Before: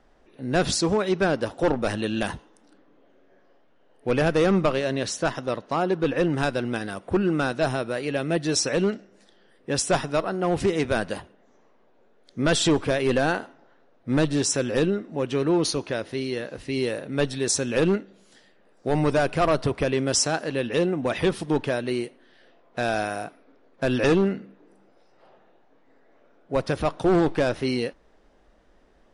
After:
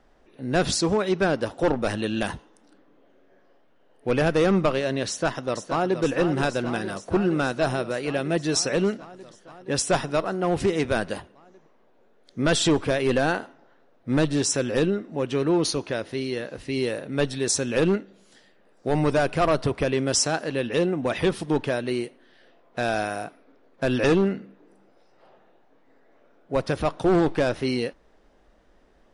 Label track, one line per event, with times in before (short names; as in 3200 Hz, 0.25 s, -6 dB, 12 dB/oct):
5.080000	6.020000	echo throw 0.47 s, feedback 80%, level -9 dB